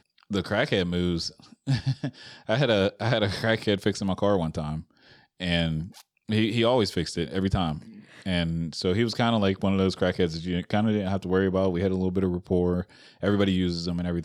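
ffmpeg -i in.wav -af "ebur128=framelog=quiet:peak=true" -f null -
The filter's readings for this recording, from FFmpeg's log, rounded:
Integrated loudness:
  I:         -26.1 LUFS
  Threshold: -36.5 LUFS
Loudness range:
  LRA:         1.9 LU
  Threshold: -46.4 LUFS
  LRA low:   -27.3 LUFS
  LRA high:  -25.4 LUFS
True peak:
  Peak:       -8.3 dBFS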